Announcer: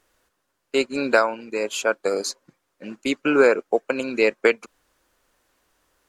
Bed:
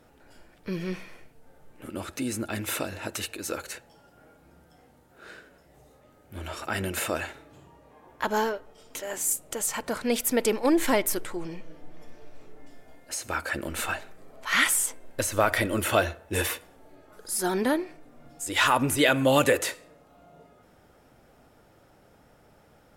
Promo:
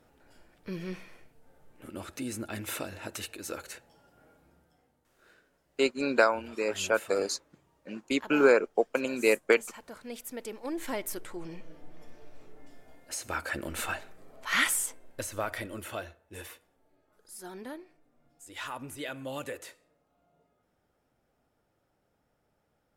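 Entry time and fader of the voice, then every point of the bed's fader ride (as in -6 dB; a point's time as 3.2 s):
5.05 s, -5.0 dB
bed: 4.38 s -5.5 dB
5.03 s -15.5 dB
10.51 s -15.5 dB
11.64 s -3.5 dB
14.62 s -3.5 dB
16.21 s -17 dB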